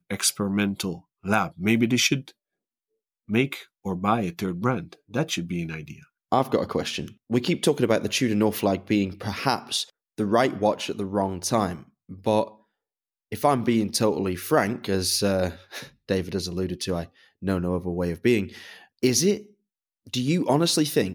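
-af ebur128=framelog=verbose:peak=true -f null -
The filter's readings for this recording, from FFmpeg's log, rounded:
Integrated loudness:
  I:         -25.0 LUFS
  Threshold: -35.5 LUFS
Loudness range:
  LRA:         3.5 LU
  Threshold: -45.9 LUFS
  LRA low:   -27.9 LUFS
  LRA high:  -24.4 LUFS
True peak:
  Peak:       -6.2 dBFS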